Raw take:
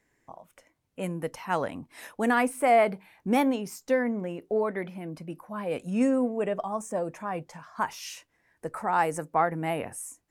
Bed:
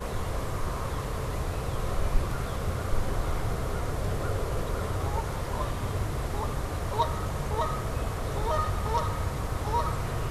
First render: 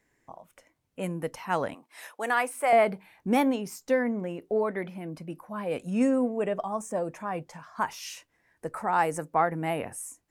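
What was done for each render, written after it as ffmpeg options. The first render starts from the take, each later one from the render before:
ffmpeg -i in.wav -filter_complex "[0:a]asettb=1/sr,asplit=3[link_01][link_02][link_03];[link_01]atrim=end=1.744[link_04];[link_02]atrim=start=1.74:end=2.73,asetpts=PTS-STARTPTS,afade=type=in:duration=0.004:curve=qsin,afade=type=out:start_time=0.986:duration=0.004:curve=qsin,highpass=560[link_05];[link_03]atrim=start=2.726[link_06];[link_04][link_05]acrossfade=duration=0.004:curve1=hsin:curve2=qsin[link_07];[link_07][link_06]acrossfade=duration=0.004:curve1=qsin:curve2=hsin" out.wav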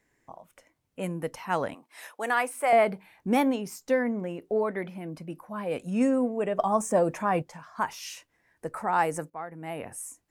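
ffmpeg -i in.wav -filter_complex "[0:a]asplit=4[link_01][link_02][link_03][link_04];[link_01]atrim=end=6.592[link_05];[link_02]atrim=start=6.588:end=7.422,asetpts=PTS-STARTPTS,volume=7dB[link_06];[link_03]atrim=start=7.418:end=9.3,asetpts=PTS-STARTPTS,afade=type=out:start_time=1.878:duration=0.004:curve=hsin:silence=0.188365[link_07];[link_04]atrim=start=9.3,asetpts=PTS-STARTPTS,afade=type=in:duration=0.7:curve=qua:silence=0.188365[link_08];[link_05][link_06]acrossfade=duration=0.004:curve1=hsin:curve2=hsin[link_09];[link_07][link_08]concat=n=2:v=0:a=1[link_10];[link_09][link_10]acrossfade=duration=0.004:curve1=hsin:curve2=hsin" out.wav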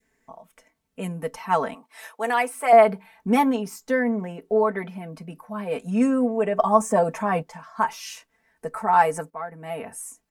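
ffmpeg -i in.wav -af "aecho=1:1:4.5:0.8,adynamicequalizer=threshold=0.02:dfrequency=1000:dqfactor=1:tfrequency=1000:tqfactor=1:attack=5:release=100:ratio=0.375:range=2.5:mode=boostabove:tftype=bell" out.wav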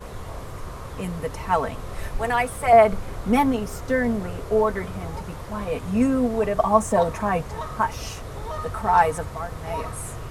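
ffmpeg -i in.wav -i bed.wav -filter_complex "[1:a]volume=-4dB[link_01];[0:a][link_01]amix=inputs=2:normalize=0" out.wav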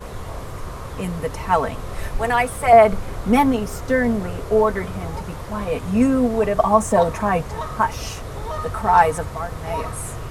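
ffmpeg -i in.wav -af "volume=3.5dB,alimiter=limit=-2dB:level=0:latency=1" out.wav

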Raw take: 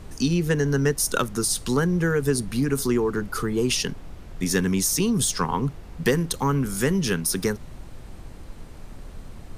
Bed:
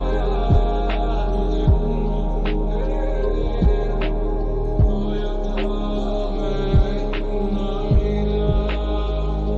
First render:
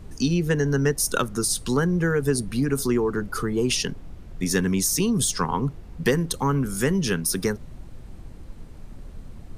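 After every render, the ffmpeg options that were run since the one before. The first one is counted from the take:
ffmpeg -i in.wav -af "afftdn=noise_reduction=6:noise_floor=-42" out.wav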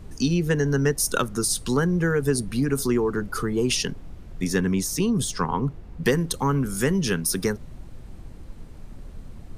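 ffmpeg -i in.wav -filter_complex "[0:a]asettb=1/sr,asplit=3[link_01][link_02][link_03];[link_01]atrim=end=4.474[link_04];[link_02]atrim=start=4.47:end=6.04,asetpts=PTS-STARTPTS,afade=type=in:duration=0.004:curve=qsin,afade=type=out:start_time=1.566:duration=0.004:curve=qsin,highshelf=frequency=3700:gain=-7[link_05];[link_03]atrim=start=6.036[link_06];[link_04][link_05]acrossfade=duration=0.004:curve1=hsin:curve2=qsin[link_07];[link_07][link_06]acrossfade=duration=0.004:curve1=qsin:curve2=hsin" out.wav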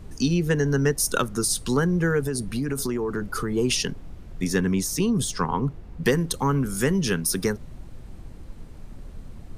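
ffmpeg -i in.wav -filter_complex "[0:a]asettb=1/sr,asplit=3[link_01][link_02][link_03];[link_01]atrim=end=2.254[link_04];[link_02]atrim=start=2.25:end=3.51,asetpts=PTS-STARTPTS,afade=type=in:duration=0.004:curve=qsin,afade=type=out:start_time=1.256:duration=0.004:curve=qsin,acompressor=threshold=-22dB:ratio=6:attack=3.2:release=140:knee=1:detection=peak[link_05];[link_03]atrim=start=3.506[link_06];[link_04][link_05]acrossfade=duration=0.004:curve1=hsin:curve2=qsin[link_07];[link_07][link_06]acrossfade=duration=0.004:curve1=qsin:curve2=hsin" out.wav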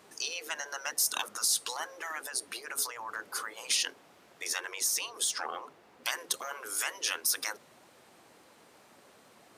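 ffmpeg -i in.wav -af "afftfilt=real='re*lt(hypot(re,im),0.141)':imag='im*lt(hypot(re,im),0.141)':win_size=1024:overlap=0.75,highpass=600" out.wav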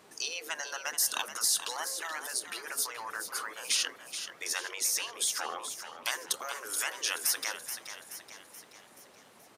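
ffmpeg -i in.wav -filter_complex "[0:a]asplit=7[link_01][link_02][link_03][link_04][link_05][link_06][link_07];[link_02]adelay=428,afreqshift=67,volume=-10dB[link_08];[link_03]adelay=856,afreqshift=134,volume=-15.8dB[link_09];[link_04]adelay=1284,afreqshift=201,volume=-21.7dB[link_10];[link_05]adelay=1712,afreqshift=268,volume=-27.5dB[link_11];[link_06]adelay=2140,afreqshift=335,volume=-33.4dB[link_12];[link_07]adelay=2568,afreqshift=402,volume=-39.2dB[link_13];[link_01][link_08][link_09][link_10][link_11][link_12][link_13]amix=inputs=7:normalize=0" out.wav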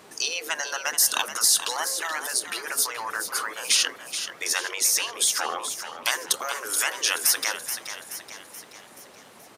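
ffmpeg -i in.wav -af "volume=8dB" out.wav

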